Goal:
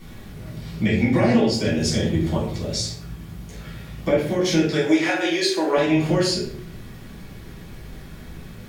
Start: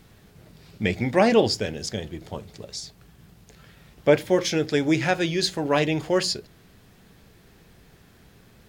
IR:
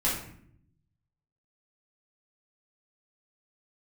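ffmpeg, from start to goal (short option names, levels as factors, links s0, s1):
-filter_complex "[0:a]asettb=1/sr,asplit=3[s0][s1][s2];[s0]atrim=end=4.644[s3];[s1]atrim=start=4.64:end=5.77,asetpts=PTS-STARTPTS,afade=t=in:d=0.004:c=qsin,afade=t=out:st=1.126:d=0.004:c=qsin,highpass=f=350:w=0.5412,highpass=f=350:w=1.3066[s4];[s2]atrim=start=5.766[s5];[s3][s4]acrossfade=d=0.004:c1=hsin:c2=qsin[s6];[s6][s5]acrossfade=d=0.004:c1=qsin:c2=hsin,acompressor=threshold=0.0398:ratio=8[s7];[1:a]atrim=start_sample=2205,asetrate=48510,aresample=44100[s8];[s7][s8]afir=irnorm=-1:irlink=0,volume=1.26"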